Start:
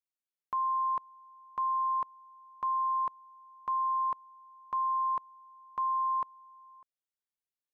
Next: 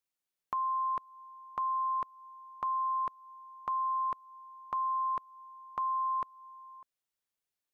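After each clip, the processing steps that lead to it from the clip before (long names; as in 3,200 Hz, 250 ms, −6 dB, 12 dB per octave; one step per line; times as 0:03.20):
dynamic equaliser 930 Hz, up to −8 dB, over −46 dBFS, Q 2.4
level +4 dB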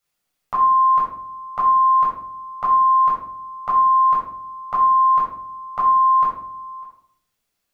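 rectangular room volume 900 cubic metres, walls furnished, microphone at 6.9 metres
level +6.5 dB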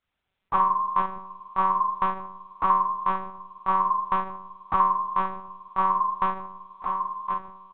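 on a send: single-tap delay 1,073 ms −6.5 dB
on the sum: one-pitch LPC vocoder at 8 kHz 190 Hz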